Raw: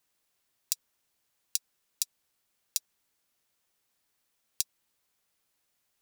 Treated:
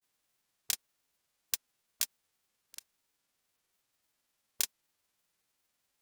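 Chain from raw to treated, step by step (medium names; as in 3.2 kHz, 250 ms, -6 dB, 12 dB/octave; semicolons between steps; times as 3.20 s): formants flattened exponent 0.3; granulator, spray 36 ms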